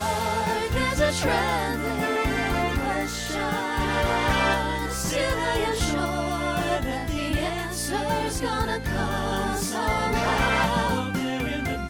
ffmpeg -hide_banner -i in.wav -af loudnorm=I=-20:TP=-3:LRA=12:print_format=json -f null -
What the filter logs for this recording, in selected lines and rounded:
"input_i" : "-25.0",
"input_tp" : "-10.0",
"input_lra" : "1.8",
"input_thresh" : "-35.0",